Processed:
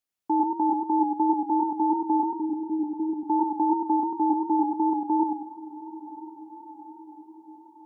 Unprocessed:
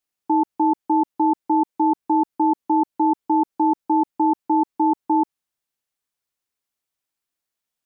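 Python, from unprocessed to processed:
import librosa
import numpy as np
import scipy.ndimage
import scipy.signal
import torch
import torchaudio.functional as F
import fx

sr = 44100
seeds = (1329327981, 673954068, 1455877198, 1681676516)

y = fx.gaussian_blur(x, sr, sigma=16.0, at=(2.3, 3.17))
y = fx.echo_diffused(y, sr, ms=1137, feedback_pct=50, wet_db=-15.5)
y = fx.echo_warbled(y, sr, ms=97, feedback_pct=37, rate_hz=2.8, cents=81, wet_db=-4.5)
y = y * librosa.db_to_amplitude(-5.0)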